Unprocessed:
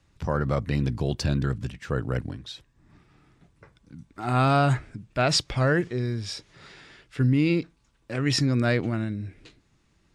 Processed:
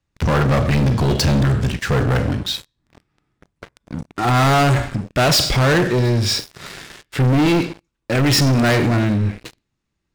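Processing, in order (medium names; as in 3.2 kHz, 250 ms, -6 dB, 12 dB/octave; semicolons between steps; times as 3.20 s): Schroeder reverb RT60 0.48 s, combs from 30 ms, DRR 10.5 dB; waveshaping leveller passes 5; trim -1.5 dB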